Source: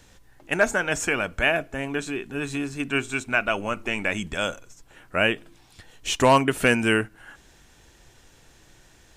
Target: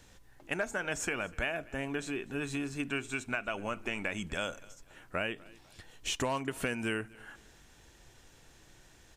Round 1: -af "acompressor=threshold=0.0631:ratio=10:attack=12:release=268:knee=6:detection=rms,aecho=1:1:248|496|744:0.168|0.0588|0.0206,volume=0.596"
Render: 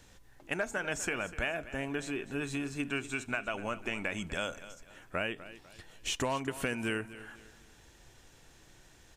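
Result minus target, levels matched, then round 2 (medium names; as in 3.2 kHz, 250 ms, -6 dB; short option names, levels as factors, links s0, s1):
echo-to-direct +8 dB
-af "acompressor=threshold=0.0631:ratio=10:attack=12:release=268:knee=6:detection=rms,aecho=1:1:248|496:0.0668|0.0234,volume=0.596"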